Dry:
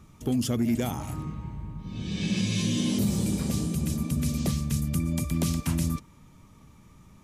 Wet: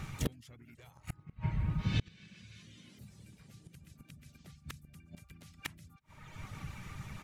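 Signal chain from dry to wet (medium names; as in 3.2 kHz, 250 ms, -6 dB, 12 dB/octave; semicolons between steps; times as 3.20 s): reverb removal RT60 0.82 s; ten-band graphic EQ 125 Hz +7 dB, 250 Hz -6 dB, 2 kHz +11 dB, 4 kHz +3 dB; in parallel at +1 dB: compression 12:1, threshold -38 dBFS, peak gain reduction 18 dB; on the sum: harmony voices -7 st -8 dB, +3 st -10 dB; inverted gate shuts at -19 dBFS, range -31 dB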